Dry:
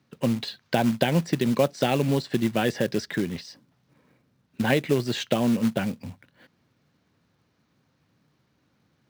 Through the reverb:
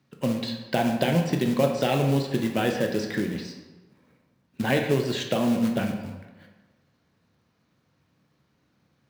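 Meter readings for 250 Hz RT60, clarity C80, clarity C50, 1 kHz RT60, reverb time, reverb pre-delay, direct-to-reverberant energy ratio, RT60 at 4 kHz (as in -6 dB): 1.2 s, 7.5 dB, 5.5 dB, 1.2 s, 1.2 s, 14 ms, 2.5 dB, 0.75 s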